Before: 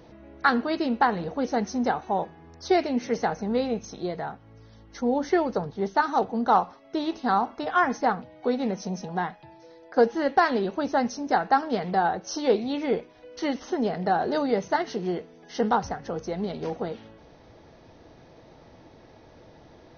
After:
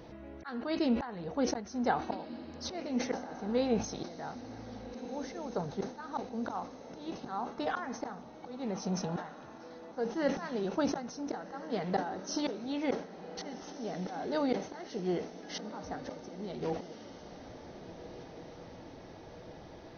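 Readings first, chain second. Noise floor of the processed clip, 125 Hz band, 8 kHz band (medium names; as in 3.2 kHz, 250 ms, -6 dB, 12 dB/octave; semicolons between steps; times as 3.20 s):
-50 dBFS, -5.5 dB, no reading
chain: slow attack 600 ms; echo that smears into a reverb 1531 ms, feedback 56%, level -12.5 dB; decay stretcher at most 120 dB/s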